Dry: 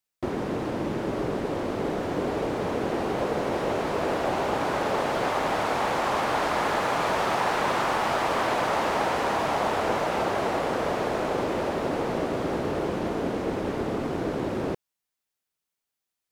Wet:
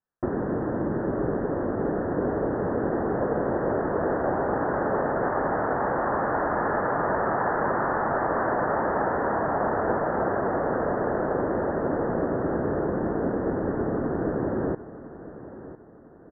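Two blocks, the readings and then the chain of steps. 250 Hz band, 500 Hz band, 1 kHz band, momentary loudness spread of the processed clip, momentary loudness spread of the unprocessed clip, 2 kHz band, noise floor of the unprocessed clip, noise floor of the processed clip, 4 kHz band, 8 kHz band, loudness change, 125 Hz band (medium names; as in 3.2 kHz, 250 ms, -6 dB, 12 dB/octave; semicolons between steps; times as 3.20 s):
+2.5 dB, +1.5 dB, -0.5 dB, 3 LU, 4 LU, -1.5 dB, under -85 dBFS, -43 dBFS, under -40 dB, under -40 dB, +0.5 dB, +2.5 dB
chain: steep low-pass 1.8 kHz 96 dB/octave; dynamic bell 1 kHz, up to -4 dB, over -37 dBFS, Q 1.2; feedback delay 1003 ms, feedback 37%, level -15 dB; trim +2.5 dB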